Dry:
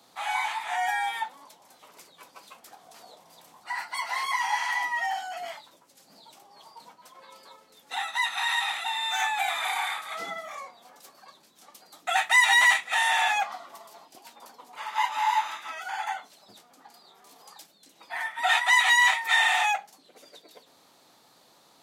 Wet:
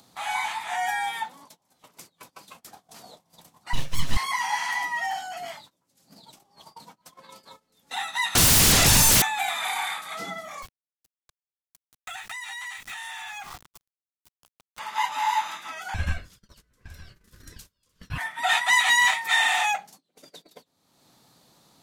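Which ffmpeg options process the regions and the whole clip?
ffmpeg -i in.wav -filter_complex "[0:a]asettb=1/sr,asplit=3[link_01][link_02][link_03];[link_01]atrim=end=3.734[link_04];[link_02]atrim=start=3.73:end=4.17,asetpts=PTS-STARTPTS,afade=type=in:duration=0.004:curve=qsin,afade=type=out:start_time=0.436:duration=0.004:curve=qsin,aeval=exprs='abs(val(0))':channel_layout=same,aecho=1:1:7.4:0.43,atrim=end_sample=19404[link_05];[link_03]atrim=start=4.166[link_06];[link_04][link_05]acrossfade=duration=0.004:curve1=hsin:curve2=qsin[link_07];[link_07][link_06]acrossfade=duration=0.004:curve1=qsin:curve2=hsin,asettb=1/sr,asplit=3[link_08][link_09][link_10];[link_08]atrim=end=8.354[link_11];[link_09]atrim=start=8.35:end=9.22,asetpts=PTS-STARTPTS,afade=type=in:duration=0.004:curve=qsin,afade=type=out:start_time=0.866:duration=0.004:curve=qsin,highshelf=frequency=2300:gain=-4,aeval=exprs='0.133*sin(PI/2*10*val(0)/0.133)':channel_layout=same[link_12];[link_10]atrim=start=9.216[link_13];[link_11][link_12]acrossfade=duration=0.004:curve1=hsin:curve2=qsin[link_14];[link_14][link_13]acrossfade=duration=0.004:curve1=qsin:curve2=hsin,asettb=1/sr,asplit=3[link_15][link_16][link_17];[link_15]atrim=end=10.624[link_18];[link_16]atrim=start=10.62:end=14.79,asetpts=PTS-STARTPTS,afade=type=in:duration=0.004:curve=qsin,afade=type=out:start_time=4.166:duration=0.004:curve=qsin,highpass=frequency=880:width=0.5412,highpass=frequency=880:width=1.3066,aeval=exprs='val(0)*gte(abs(val(0)),0.00944)':channel_layout=same,acompressor=threshold=-34dB:ratio=12:attack=3.2:release=140:knee=1:detection=peak[link_19];[link_17]atrim=start=14.786[link_20];[link_18][link_19]acrossfade=duration=0.004:curve1=hsin:curve2=qsin[link_21];[link_21][link_20]acrossfade=duration=0.004:curve1=qsin:curve2=hsin,asettb=1/sr,asplit=3[link_22][link_23][link_24];[link_22]atrim=end=15.944[link_25];[link_23]atrim=start=15.94:end=18.18,asetpts=PTS-STARTPTS,afade=type=in:duration=0.004:curve=qsin,afade=type=out:start_time=2.236:duration=0.004:curve=qsin,aeval=exprs='val(0)*sin(2*PI*780*n/s)':channel_layout=same,aecho=1:1:913:0.106,atrim=end_sample=98784[link_26];[link_24]atrim=start=18.176[link_27];[link_25][link_26]acrossfade=duration=0.004:curve1=hsin:curve2=qsin[link_28];[link_28][link_27]acrossfade=duration=0.004:curve1=qsin:curve2=hsin,bass=frequency=250:gain=14,treble=frequency=4000:gain=4,agate=range=-24dB:threshold=-48dB:ratio=16:detection=peak,acompressor=mode=upward:threshold=-41dB:ratio=2.5" out.wav

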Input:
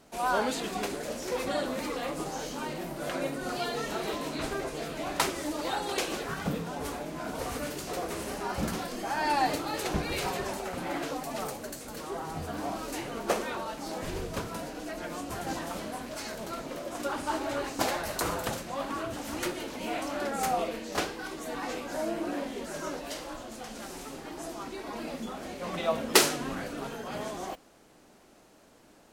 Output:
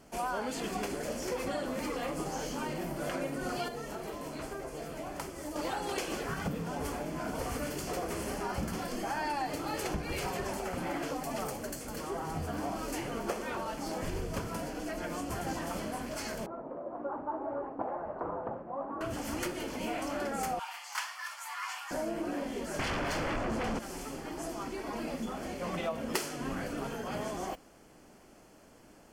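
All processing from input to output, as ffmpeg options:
ffmpeg -i in.wav -filter_complex "[0:a]asettb=1/sr,asplit=3[link_01][link_02][link_03];[link_01]atrim=end=3.684[link_04];[link_02]atrim=start=3.68:end=5.56,asetpts=PTS-STARTPTS,afade=type=in:duration=0.004:curve=qsin,afade=type=out:start_time=1.876:duration=0.004:curve=qsin,equalizer=frequency=2900:width_type=o:width=2.7:gain=-6,acrossover=split=160|410[link_05][link_06][link_07];[link_05]acompressor=threshold=-53dB:ratio=4[link_08];[link_06]acompressor=threshold=-50dB:ratio=4[link_09];[link_07]acompressor=threshold=-40dB:ratio=4[link_10];[link_08][link_09][link_10]amix=inputs=3:normalize=0[link_11];[link_03]atrim=start=5.556[link_12];[link_04][link_11]acrossfade=duration=0.004:curve1=hsin:curve2=qsin[link_13];[link_13][link_12]acrossfade=duration=0.004:curve1=qsin:curve2=hsin,asettb=1/sr,asplit=3[link_14][link_15][link_16];[link_14]atrim=end=16.464[link_17];[link_15]atrim=start=16.46:end=19.01,asetpts=PTS-STARTPTS,afade=type=in:duration=0.004:curve=qsin,afade=type=out:start_time=2.546:duration=0.004:curve=qsin,lowpass=frequency=1000:width=0.5412,lowpass=frequency=1000:width=1.3066,aemphasis=mode=production:type=riaa[link_18];[link_16]atrim=start=19.006[link_19];[link_17][link_18]acrossfade=duration=0.004:curve1=hsin:curve2=qsin[link_20];[link_20][link_19]acrossfade=duration=0.004:curve1=qsin:curve2=hsin,asettb=1/sr,asplit=3[link_21][link_22][link_23];[link_21]atrim=end=20.594[link_24];[link_22]atrim=start=20.59:end=21.91,asetpts=PTS-STARTPTS,afade=type=in:duration=0.004:curve=qsin,afade=type=out:start_time=1.316:duration=0.004:curve=qsin,highpass=frequency=720:width=0.5412,highpass=frequency=720:width=1.3066,afreqshift=250[link_25];[link_23]atrim=start=21.906[link_26];[link_24][link_25]acrossfade=duration=0.004:curve1=hsin:curve2=qsin[link_27];[link_27][link_26]acrossfade=duration=0.004:curve1=qsin:curve2=hsin,asettb=1/sr,asplit=3[link_28][link_29][link_30];[link_28]atrim=end=22.794[link_31];[link_29]atrim=start=22.79:end=23.79,asetpts=PTS-STARTPTS,afade=type=in:duration=0.004:curve=qsin,afade=type=out:start_time=0.996:duration=0.004:curve=qsin,lowpass=frequency=1200:poles=1,aeval=exprs='0.0501*sin(PI/2*6.31*val(0)/0.0501)':channel_layout=same[link_32];[link_30]atrim=start=23.786[link_33];[link_31][link_32]acrossfade=duration=0.004:curve1=hsin:curve2=qsin[link_34];[link_34][link_33]acrossfade=duration=0.004:curve1=qsin:curve2=hsin,lowshelf=frequency=170:gain=5,bandreject=frequency=3800:width=5.3,acompressor=threshold=-31dB:ratio=6" out.wav

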